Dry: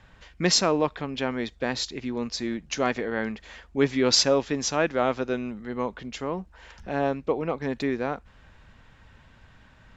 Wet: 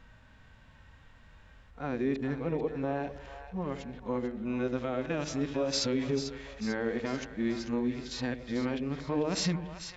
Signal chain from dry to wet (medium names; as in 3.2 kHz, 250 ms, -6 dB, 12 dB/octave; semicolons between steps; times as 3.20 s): reverse the whole clip; harmonic-percussive split percussive -15 dB; peak limiter -21 dBFS, peak gain reduction 10 dB; on a send: two-band feedback delay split 620 Hz, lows 87 ms, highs 443 ms, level -10 dB